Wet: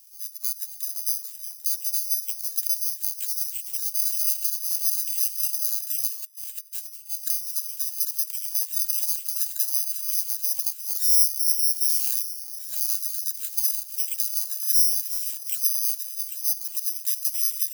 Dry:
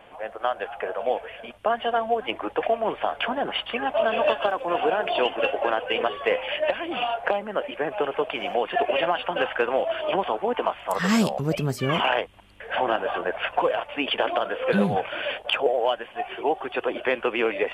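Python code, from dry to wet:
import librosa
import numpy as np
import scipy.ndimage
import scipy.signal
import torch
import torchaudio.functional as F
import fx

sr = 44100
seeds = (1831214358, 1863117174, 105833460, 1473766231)

y = fx.low_shelf(x, sr, hz=320.0, db=11.0)
y = fx.echo_split(y, sr, split_hz=860.0, low_ms=358, high_ms=795, feedback_pct=52, wet_db=-11.5)
y = (np.kron(y[::8], np.eye(8)[0]) * 8)[:len(y)]
y = fx.over_compress(y, sr, threshold_db=-23.0, ratio=-0.5, at=(6.22, 7.09), fade=0.02)
y = np.diff(y, prepend=0.0)
y = y * librosa.db_to_amplitude(-16.5)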